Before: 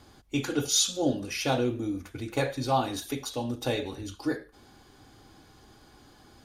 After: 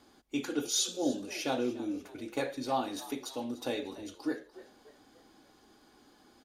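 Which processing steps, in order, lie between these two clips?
low shelf with overshoot 170 Hz −9.5 dB, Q 1.5
echo with shifted repeats 295 ms, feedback 43%, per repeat +64 Hz, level −18 dB
level −6 dB

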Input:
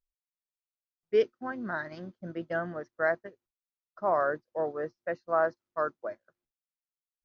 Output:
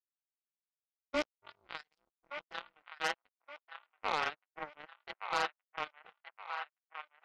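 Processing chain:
ring modulation 150 Hz
power curve on the samples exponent 3
soft clipping −31.5 dBFS, distortion −5 dB
tilt shelving filter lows −8.5 dB, about 640 Hz
notch filter 1,700 Hz, Q 11
delay with a band-pass on its return 1,171 ms, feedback 41%, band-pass 1,500 Hz, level −6 dB
level +9 dB

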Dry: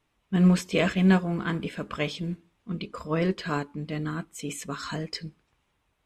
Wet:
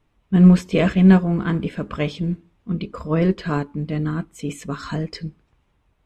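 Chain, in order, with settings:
spectral tilt −2 dB per octave
level +3.5 dB

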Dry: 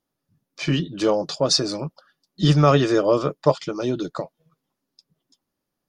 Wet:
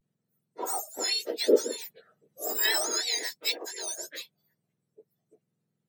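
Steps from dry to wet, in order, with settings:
frequency axis turned over on the octave scale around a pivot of 1,500 Hz
pitch vibrato 0.36 Hz 43 cents
0:01.86–0:02.55: multiband upward and downward compressor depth 40%
level −4.5 dB

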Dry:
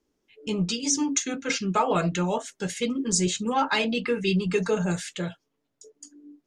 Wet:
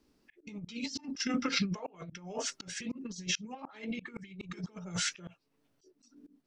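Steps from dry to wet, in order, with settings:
formants moved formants −3 semitones
compressor whose output falls as the input rises −31 dBFS, ratio −0.5
volume swells 403 ms

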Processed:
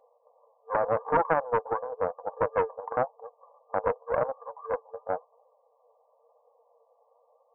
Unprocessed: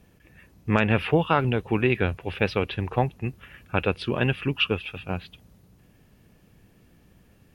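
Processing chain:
brick-wall band-pass 450–1,200 Hz
brickwall limiter −18.5 dBFS, peak gain reduction 8 dB
flanger 0.92 Hz, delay 3.4 ms, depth 6.2 ms, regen +49%
highs frequency-modulated by the lows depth 0.57 ms
level +9 dB

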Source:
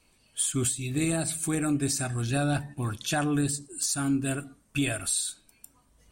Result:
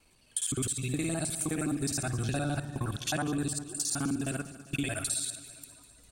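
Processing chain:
reversed piece by piece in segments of 52 ms
downward compressor, threshold −28 dBFS, peak gain reduction 6.5 dB
repeating echo 200 ms, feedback 60%, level −15.5 dB

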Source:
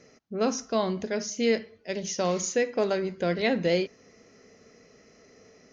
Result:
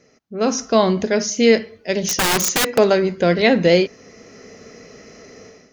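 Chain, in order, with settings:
automatic gain control gain up to 14 dB
0:02.02–0:02.78: wrap-around overflow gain 12 dB

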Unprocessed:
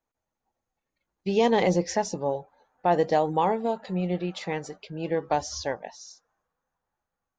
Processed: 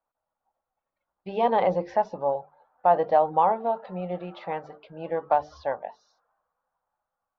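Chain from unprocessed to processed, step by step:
low-pass filter 3,600 Hz 24 dB per octave
flat-topped bell 880 Hz +11 dB
mains-hum notches 50/100/150/200/250/300/350/400/450 Hz
level −7 dB

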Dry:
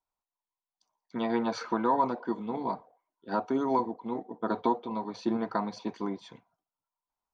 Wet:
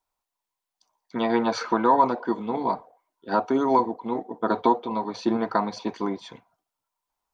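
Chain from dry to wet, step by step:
parametric band 170 Hz −4 dB 1.5 octaves
level +7.5 dB

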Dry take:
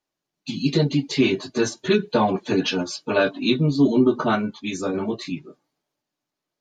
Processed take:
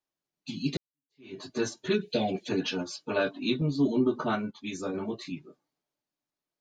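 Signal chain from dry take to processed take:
0:00.77–0:01.40: fade in exponential
0:02.01–0:02.49: drawn EQ curve 720 Hz 0 dB, 1,000 Hz −22 dB, 2,300 Hz +7 dB
0:03.61–0:04.55: noise gate −27 dBFS, range −11 dB
level −8 dB

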